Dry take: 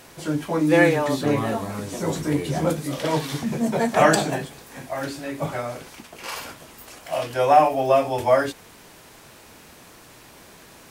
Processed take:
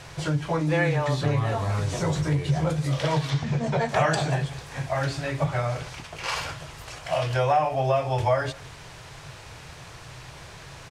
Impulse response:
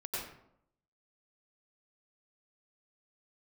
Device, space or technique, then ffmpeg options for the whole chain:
jukebox: -filter_complex "[0:a]lowpass=6500,lowshelf=f=170:t=q:w=3:g=6,acompressor=threshold=0.0562:ratio=3,asettb=1/sr,asplit=3[s0][s1][s2];[s0]atrim=end=3.304[s3];[s1]atrim=start=3.3:end=3.89,asetpts=PTS-STARTPTS,afade=t=in:d=0.004:c=qsin,afade=t=out:st=0.586:d=0.004:c=qsin,lowpass=6100[s4];[s2]atrim=start=3.886[s5];[s3][s4]acrossfade=d=0.004:c1=hsin:c2=qsin[s6];[s6][s5]acrossfade=d=0.004:c1=qsin:c2=hsin,equalizer=f=270:w=1:g=-6,aecho=1:1:169:0.0944,volume=1.68"

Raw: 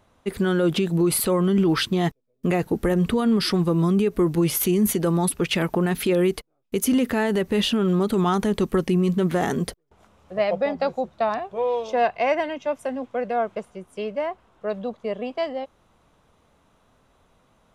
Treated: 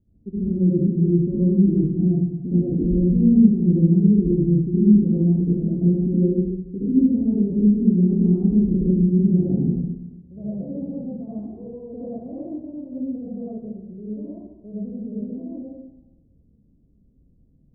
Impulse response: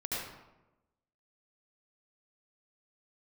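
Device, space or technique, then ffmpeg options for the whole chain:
next room: -filter_complex "[0:a]lowpass=f=290:w=0.5412,lowpass=f=290:w=1.3066[s0];[1:a]atrim=start_sample=2205[s1];[s0][s1]afir=irnorm=-1:irlink=0,volume=1.19"

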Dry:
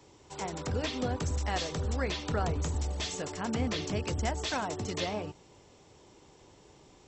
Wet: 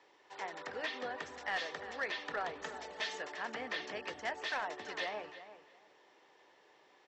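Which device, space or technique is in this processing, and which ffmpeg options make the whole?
megaphone: -filter_complex "[0:a]highpass=550,lowpass=4000,equalizer=f=1800:t=o:w=0.24:g=11.5,asoftclip=type=hard:threshold=0.0501,lowpass=6700,asettb=1/sr,asplit=3[s0][s1][s2];[s0]atrim=end=2.614[s3];[s1]atrim=start=2.61:end=3.18,asetpts=PTS-STARTPTS,afade=t=in:d=0.004:c=qsin,afade=t=out:st=0.566:d=0.004:c=qsin,aecho=1:1:4.6:0.93,atrim=end_sample=25137[s4];[s2]atrim=start=3.176[s5];[s3][s4]acrossfade=d=0.004:c1=hsin:c2=qsin[s6];[s6][s5]acrossfade=d=0.004:c1=qsin:c2=hsin,asplit=2[s7][s8];[s8]adelay=344,lowpass=f=3300:p=1,volume=0.237,asplit=2[s9][s10];[s10]adelay=344,lowpass=f=3300:p=1,volume=0.23,asplit=2[s11][s12];[s12]adelay=344,lowpass=f=3300:p=1,volume=0.23[s13];[s7][s9][s11][s13]amix=inputs=4:normalize=0,volume=0.668"

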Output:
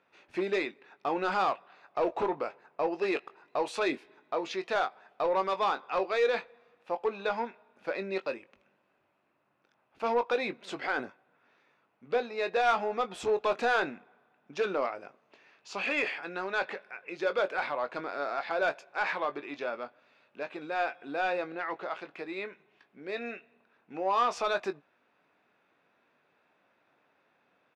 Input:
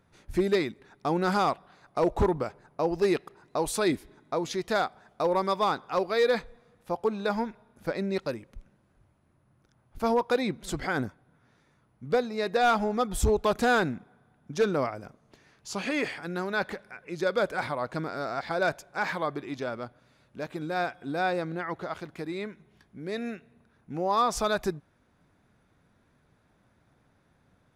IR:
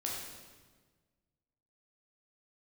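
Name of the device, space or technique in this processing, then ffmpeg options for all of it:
intercom: -filter_complex "[0:a]highpass=420,lowpass=3700,equalizer=f=2600:t=o:w=0.21:g=9.5,asoftclip=type=tanh:threshold=0.106,asplit=2[s0][s1];[s1]adelay=21,volume=0.299[s2];[s0][s2]amix=inputs=2:normalize=0"

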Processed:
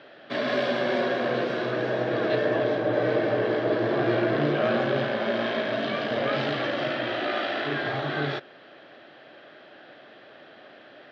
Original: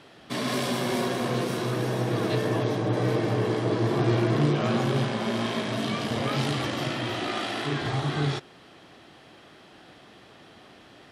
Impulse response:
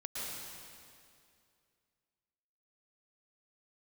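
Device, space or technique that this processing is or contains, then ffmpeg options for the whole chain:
kitchen radio: -af "highpass=190,equalizer=f=190:t=q:w=4:g=-5,equalizer=f=590:t=q:w=4:g=10,equalizer=f=980:t=q:w=4:g=-4,equalizer=f=1600:t=q:w=4:g=8,lowpass=f=4100:w=0.5412,lowpass=f=4100:w=1.3066"

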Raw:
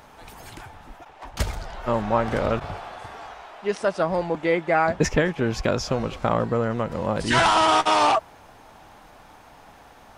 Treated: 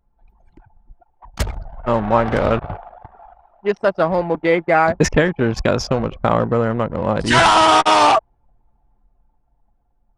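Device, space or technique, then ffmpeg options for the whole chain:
voice memo with heavy noise removal: -af "anlmdn=25.1,dynaudnorm=f=340:g=9:m=2,volume=1.19"

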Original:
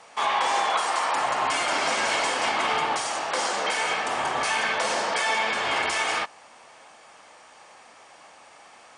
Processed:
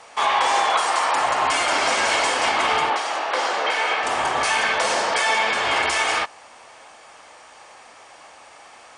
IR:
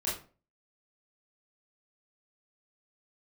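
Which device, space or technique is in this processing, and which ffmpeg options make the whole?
low shelf boost with a cut just above: -filter_complex "[0:a]lowshelf=f=95:g=5.5,equalizer=f=180:t=o:w=1:g=-5.5,asettb=1/sr,asplit=3[s0][s1][s2];[s0]atrim=end=2.904[s3];[s1]atrim=start=2.9:end=4.03,asetpts=PTS-STARTPTS,afade=t=in:d=0.004:c=qsin,afade=t=out:st=1.126:d=0.004:c=qsin,acrossover=split=220 4700:gain=0.0631 1 0.224[s4][s5][s6];[s4][s5][s6]amix=inputs=3:normalize=0[s7];[s2]atrim=start=4.026[s8];[s3][s7]acrossfade=d=0.004:c1=hsin:c2=qsin[s9];[s9][s8]acrossfade=d=0.004:c1=qsin:c2=hsin,volume=1.68"

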